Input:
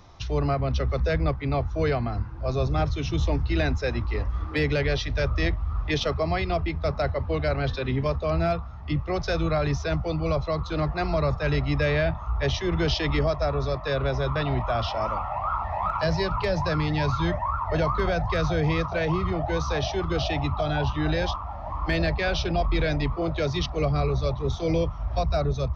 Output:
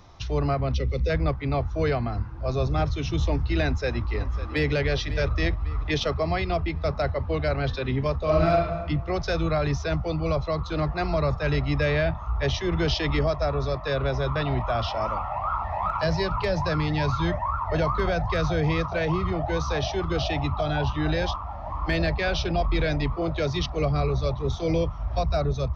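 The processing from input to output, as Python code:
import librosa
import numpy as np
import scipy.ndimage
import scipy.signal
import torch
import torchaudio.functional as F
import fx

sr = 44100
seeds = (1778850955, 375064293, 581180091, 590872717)

y = fx.spec_box(x, sr, start_s=0.75, length_s=0.35, low_hz=550.0, high_hz=1900.0, gain_db=-13)
y = fx.echo_throw(y, sr, start_s=3.65, length_s=1.08, ms=550, feedback_pct=45, wet_db=-14.0)
y = fx.reverb_throw(y, sr, start_s=8.18, length_s=0.64, rt60_s=1.2, drr_db=-1.5)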